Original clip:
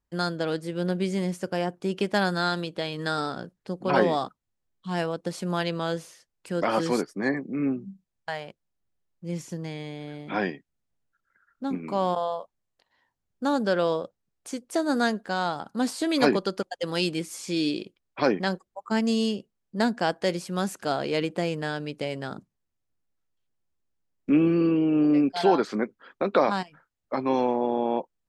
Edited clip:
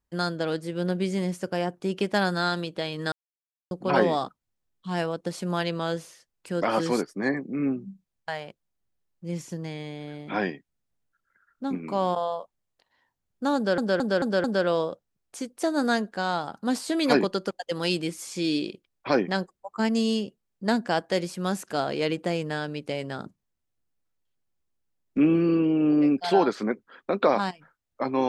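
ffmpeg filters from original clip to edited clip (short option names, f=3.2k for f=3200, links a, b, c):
-filter_complex "[0:a]asplit=7[a][b][c][d][e][f][g];[a]atrim=end=3.12,asetpts=PTS-STARTPTS,afade=t=out:st=3.116:d=0.004:c=hsin[h];[b]atrim=start=3.12:end=3.71,asetpts=PTS-STARTPTS,volume=0[i];[c]atrim=start=3.71:end=13.782,asetpts=PTS-STARTPTS,afade=t=in:d=0.004:c=hsin[j];[d]atrim=start=13.558:end=13.782[k];[e]atrim=start=13.558:end=13.782[l];[f]atrim=start=13.558:end=13.782[m];[g]atrim=start=13.558[n];[h][i][j]concat=n=3:v=0:a=1[o];[o][k]acrossfade=d=0.004:c1=hsin:c2=hsin[p];[p][l]acrossfade=d=0.004:c1=hsin:c2=hsin[q];[q][m]acrossfade=d=0.004:c1=hsin:c2=hsin[r];[r][n]acrossfade=d=0.004:c1=hsin:c2=hsin"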